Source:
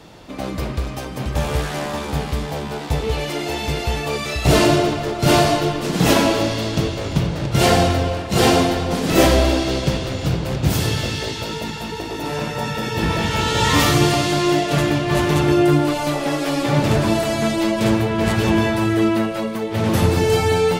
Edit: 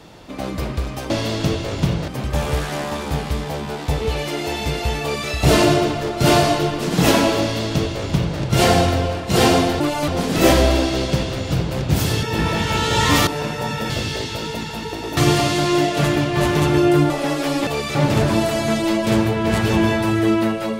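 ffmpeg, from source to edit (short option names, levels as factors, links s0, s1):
-filter_complex "[0:a]asplit=12[s0][s1][s2][s3][s4][s5][s6][s7][s8][s9][s10][s11];[s0]atrim=end=1.102[s12];[s1]atrim=start=6.428:end=7.412[s13];[s2]atrim=start=1.098:end=8.822[s14];[s3]atrim=start=15.838:end=16.122[s15];[s4]atrim=start=8.818:end=10.972[s16];[s5]atrim=start=12.868:end=13.912[s17];[s6]atrim=start=12.238:end=12.872[s18];[s7]atrim=start=10.968:end=12.242[s19];[s8]atrim=start=13.908:end=15.842[s20];[s9]atrim=start=16.118:end=16.692[s21];[s10]atrim=start=4.028:end=4.312[s22];[s11]atrim=start=16.688[s23];[s12][s13]acrossfade=d=0.004:c1=hsin:c2=hsin[s24];[s24][s14]acrossfade=d=0.004:c1=hsin:c2=hsin[s25];[s25][s15]acrossfade=d=0.004:c1=hsin:c2=hsin[s26];[s26][s16]acrossfade=d=0.004:c1=hsin:c2=hsin[s27];[s27][s17]acrossfade=d=0.004:c1=hsin:c2=hsin[s28];[s28][s18]acrossfade=d=0.004:c1=hsin:c2=hsin[s29];[s29][s19]acrossfade=d=0.004:c1=hsin:c2=hsin[s30];[s30][s20]acrossfade=d=0.004:c1=hsin:c2=hsin[s31];[s31][s21]acrossfade=d=0.004:c1=hsin:c2=hsin[s32];[s32][s22]acrossfade=d=0.004:c1=hsin:c2=hsin[s33];[s33][s23]acrossfade=d=0.004:c1=hsin:c2=hsin"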